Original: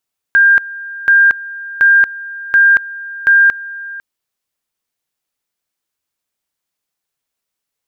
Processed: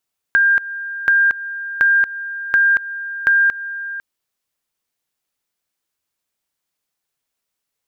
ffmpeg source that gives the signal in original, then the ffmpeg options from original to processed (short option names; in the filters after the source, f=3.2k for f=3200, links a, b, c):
-f lavfi -i "aevalsrc='pow(10,(-5-19*gte(mod(t,0.73),0.23))/20)*sin(2*PI*1600*t)':d=3.65:s=44100"
-af "acompressor=threshold=-13dB:ratio=4"